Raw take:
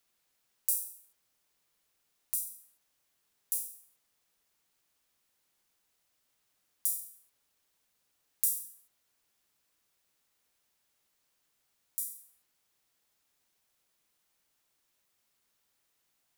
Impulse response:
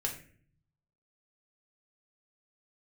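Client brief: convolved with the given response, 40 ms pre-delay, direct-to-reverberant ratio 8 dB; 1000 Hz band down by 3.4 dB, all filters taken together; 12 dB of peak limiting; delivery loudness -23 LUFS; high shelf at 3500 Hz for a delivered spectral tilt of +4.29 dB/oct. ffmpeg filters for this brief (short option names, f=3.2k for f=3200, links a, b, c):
-filter_complex "[0:a]equalizer=f=1k:t=o:g=-4,highshelf=f=3.5k:g=-4.5,alimiter=limit=-19dB:level=0:latency=1,asplit=2[a][b];[1:a]atrim=start_sample=2205,adelay=40[c];[b][c]afir=irnorm=-1:irlink=0,volume=-11dB[d];[a][d]amix=inputs=2:normalize=0,volume=17.5dB"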